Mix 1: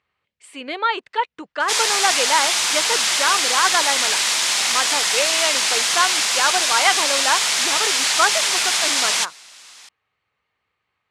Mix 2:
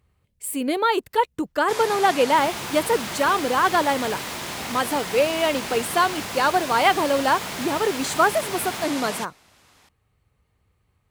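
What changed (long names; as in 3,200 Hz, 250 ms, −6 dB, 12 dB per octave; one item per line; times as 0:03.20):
speech: remove low-pass filter 2,300 Hz 12 dB per octave
first sound −5.5 dB
master: remove meter weighting curve ITU-R 468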